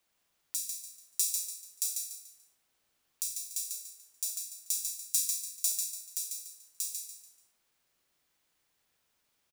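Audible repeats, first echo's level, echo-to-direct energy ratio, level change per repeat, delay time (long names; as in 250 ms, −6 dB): 4, −5.0 dB, −4.5 dB, −9.5 dB, 145 ms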